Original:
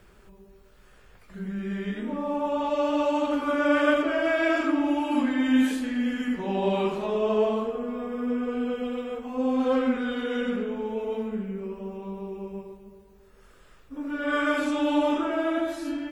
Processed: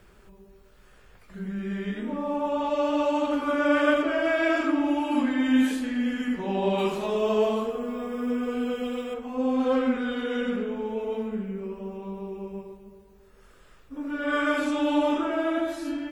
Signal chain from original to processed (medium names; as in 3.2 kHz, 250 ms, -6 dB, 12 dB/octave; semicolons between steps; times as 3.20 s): 6.78–9.14 s: treble shelf 4.4 kHz +11 dB